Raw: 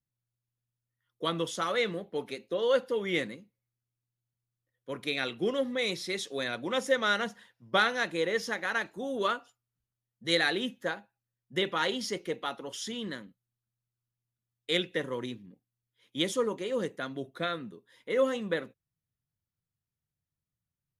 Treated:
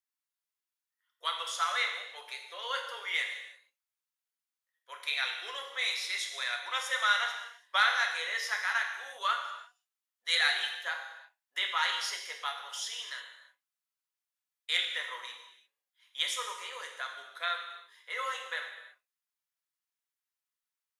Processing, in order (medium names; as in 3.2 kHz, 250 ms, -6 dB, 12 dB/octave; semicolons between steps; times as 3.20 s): inverse Chebyshev high-pass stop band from 150 Hz, stop band 80 dB; gated-style reverb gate 370 ms falling, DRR 1.5 dB